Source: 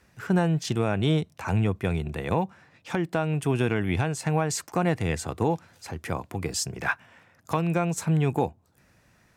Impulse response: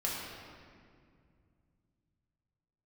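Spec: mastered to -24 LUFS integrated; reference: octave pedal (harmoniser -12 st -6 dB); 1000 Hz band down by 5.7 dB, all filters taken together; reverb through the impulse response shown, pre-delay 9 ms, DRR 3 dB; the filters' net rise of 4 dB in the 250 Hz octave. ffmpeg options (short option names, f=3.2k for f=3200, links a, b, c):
-filter_complex "[0:a]equalizer=f=250:t=o:g=7,equalizer=f=1k:t=o:g=-8.5,asplit=2[a][b];[1:a]atrim=start_sample=2205,adelay=9[c];[b][c]afir=irnorm=-1:irlink=0,volume=-8.5dB[d];[a][d]amix=inputs=2:normalize=0,asplit=2[e][f];[f]asetrate=22050,aresample=44100,atempo=2,volume=-6dB[g];[e][g]amix=inputs=2:normalize=0,volume=-1dB"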